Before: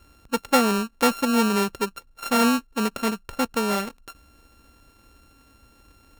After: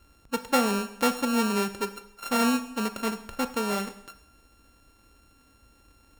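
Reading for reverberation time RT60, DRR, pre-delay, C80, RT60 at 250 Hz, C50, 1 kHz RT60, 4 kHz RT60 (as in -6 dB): 0.80 s, 10.0 dB, 20 ms, 16.0 dB, 0.80 s, 13.0 dB, 0.80 s, 0.80 s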